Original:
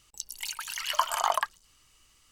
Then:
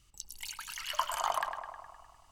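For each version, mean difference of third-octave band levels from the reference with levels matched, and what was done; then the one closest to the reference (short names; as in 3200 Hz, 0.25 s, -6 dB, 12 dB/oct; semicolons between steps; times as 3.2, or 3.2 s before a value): 3.0 dB: low shelf 190 Hz +11.5 dB; notch 480 Hz, Q 12; on a send: tape echo 0.102 s, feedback 74%, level -6 dB, low-pass 2400 Hz; on the sum: gain -6.5 dB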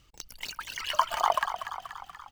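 6.0 dB: median filter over 5 samples; reverb removal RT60 0.77 s; low shelf 490 Hz +7.5 dB; on a send: frequency-shifting echo 0.24 s, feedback 59%, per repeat +36 Hz, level -10 dB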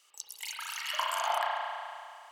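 4.5 dB: HPF 490 Hz 24 dB/oct; dynamic EQ 1200 Hz, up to -4 dB, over -36 dBFS, Q 2.6; in parallel at -0.5 dB: compressor, threshold -39 dBFS, peak gain reduction 17.5 dB; on the sum: spring tank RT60 2.3 s, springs 32 ms, chirp 40 ms, DRR -4.5 dB; gain -8 dB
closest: first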